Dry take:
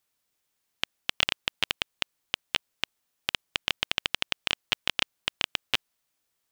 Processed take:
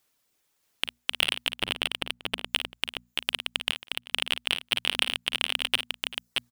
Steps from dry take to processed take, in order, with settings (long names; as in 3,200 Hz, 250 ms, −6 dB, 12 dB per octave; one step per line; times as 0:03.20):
soft clipping −13.5 dBFS, distortion −10 dB
0:01.51–0:02.45: tilt shelving filter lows +6.5 dB, about 1,400 Hz
reverb reduction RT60 0.67 s
parametric band 290 Hz +2.5 dB 1.5 octaves
mains-hum notches 60/120/180/240 Hz
0:03.68–0:04.12: gate with flip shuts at −23 dBFS, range −41 dB
multi-tap delay 41/53/390/627 ms −17.5/−9/−18/−4 dB
level +6 dB